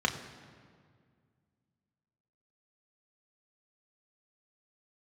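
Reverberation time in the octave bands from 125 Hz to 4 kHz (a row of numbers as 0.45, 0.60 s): 2.7, 2.6, 2.1, 1.9, 1.6, 1.3 s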